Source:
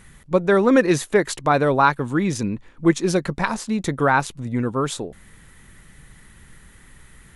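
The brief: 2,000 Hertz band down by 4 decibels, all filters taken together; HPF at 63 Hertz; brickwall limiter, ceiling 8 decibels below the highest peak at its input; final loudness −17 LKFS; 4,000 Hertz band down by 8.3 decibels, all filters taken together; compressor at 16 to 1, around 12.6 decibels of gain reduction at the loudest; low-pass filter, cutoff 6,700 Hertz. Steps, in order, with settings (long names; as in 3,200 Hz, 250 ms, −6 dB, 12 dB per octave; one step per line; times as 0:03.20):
high-pass filter 63 Hz
low-pass filter 6,700 Hz
parametric band 2,000 Hz −4 dB
parametric band 4,000 Hz −8.5 dB
downward compressor 16 to 1, threshold −24 dBFS
level +15 dB
brickwall limiter −7 dBFS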